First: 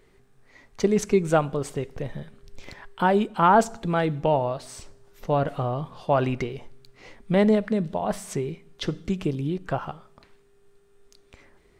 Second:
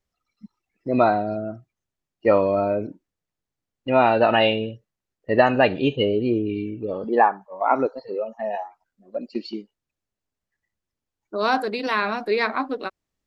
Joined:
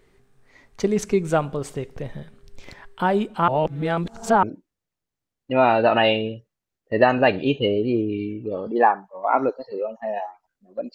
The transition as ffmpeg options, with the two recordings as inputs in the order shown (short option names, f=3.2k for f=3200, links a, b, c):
-filter_complex "[0:a]apad=whole_dur=10.94,atrim=end=10.94,asplit=2[a][b];[a]atrim=end=3.482[c];[b]atrim=start=3.478:end=4.432,asetpts=PTS-STARTPTS,areverse[d];[1:a]atrim=start=2.798:end=9.31[e];[c][d]acrossfade=d=0.004:c1=hsin:c2=hsin[f];[f][e]acrossfade=d=0.004:c1=hsin:c2=hsin"